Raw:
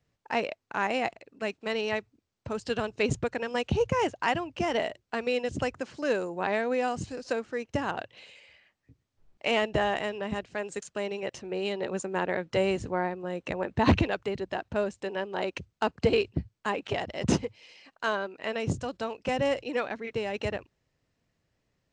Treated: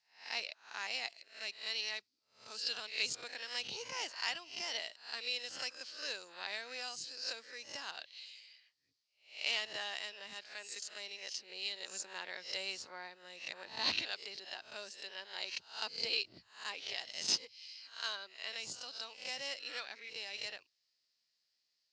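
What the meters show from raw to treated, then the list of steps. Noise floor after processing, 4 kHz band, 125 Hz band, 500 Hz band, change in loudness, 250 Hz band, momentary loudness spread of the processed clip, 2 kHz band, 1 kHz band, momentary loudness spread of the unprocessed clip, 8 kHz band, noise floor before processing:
-82 dBFS, +2.0 dB, under -30 dB, -22.5 dB, -9.5 dB, -28.0 dB, 11 LU, -8.0 dB, -17.0 dB, 8 LU, +0.5 dB, -79 dBFS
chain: reverse spectral sustain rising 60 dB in 0.40 s; band-pass filter 4.7 kHz, Q 4.9; trim +9.5 dB

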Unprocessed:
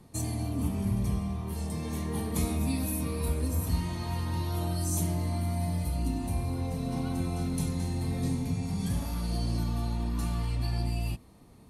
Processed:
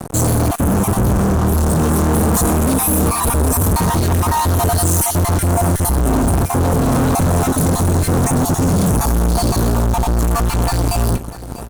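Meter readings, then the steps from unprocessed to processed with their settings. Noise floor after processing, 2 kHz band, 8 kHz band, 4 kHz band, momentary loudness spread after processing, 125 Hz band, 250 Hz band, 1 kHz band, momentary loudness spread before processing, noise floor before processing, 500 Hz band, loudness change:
-27 dBFS, +18.5 dB, +20.0 dB, +14.0 dB, 3 LU, +14.5 dB, +15.0 dB, +22.0 dB, 4 LU, -53 dBFS, +20.0 dB, +16.0 dB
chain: random holes in the spectrogram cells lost 24%; fuzz box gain 49 dB, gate -52 dBFS; high-order bell 3.1 kHz -8.5 dB; delay 645 ms -16 dB

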